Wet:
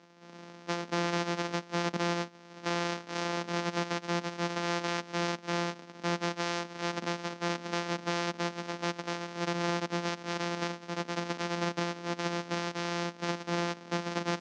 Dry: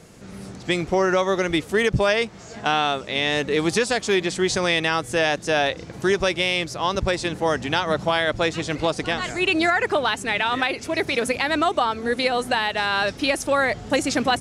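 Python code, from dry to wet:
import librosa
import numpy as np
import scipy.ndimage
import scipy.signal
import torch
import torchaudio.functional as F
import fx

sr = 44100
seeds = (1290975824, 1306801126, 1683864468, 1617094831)

y = np.r_[np.sort(x[:len(x) // 256 * 256].reshape(-1, 256), axis=1).ravel(), x[len(x) // 256 * 256:]]
y = scipy.signal.sosfilt(scipy.signal.ellip(3, 1.0, 40, [200.0, 6000.0], 'bandpass', fs=sr, output='sos'), y)
y = y * librosa.db_to_amplitude(-9.0)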